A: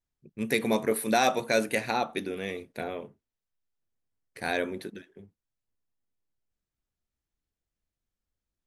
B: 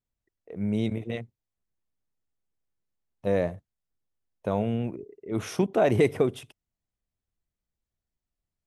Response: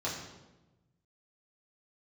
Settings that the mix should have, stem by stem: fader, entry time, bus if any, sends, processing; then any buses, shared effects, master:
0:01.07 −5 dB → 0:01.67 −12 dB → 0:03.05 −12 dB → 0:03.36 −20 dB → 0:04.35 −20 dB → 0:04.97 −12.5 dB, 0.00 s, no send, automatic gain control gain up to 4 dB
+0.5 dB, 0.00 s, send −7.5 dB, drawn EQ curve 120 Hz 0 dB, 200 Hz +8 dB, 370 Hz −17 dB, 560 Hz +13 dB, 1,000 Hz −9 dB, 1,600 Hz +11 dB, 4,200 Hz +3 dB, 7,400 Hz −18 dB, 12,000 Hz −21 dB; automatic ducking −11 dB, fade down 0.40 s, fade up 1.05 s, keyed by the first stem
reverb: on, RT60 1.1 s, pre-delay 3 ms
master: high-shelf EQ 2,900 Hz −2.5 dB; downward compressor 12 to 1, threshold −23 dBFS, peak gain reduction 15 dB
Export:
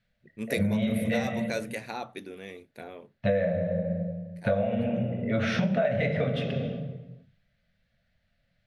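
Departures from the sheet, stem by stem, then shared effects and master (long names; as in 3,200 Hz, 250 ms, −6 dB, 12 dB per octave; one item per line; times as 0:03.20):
stem B +0.5 dB → +11.5 dB
master: missing high-shelf EQ 2,900 Hz −2.5 dB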